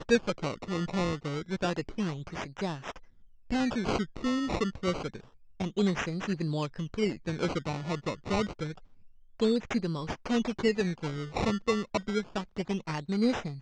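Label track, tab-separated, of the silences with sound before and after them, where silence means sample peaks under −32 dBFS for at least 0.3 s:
2.910000	3.510000	silence
5.150000	5.600000	silence
8.720000	9.400000	silence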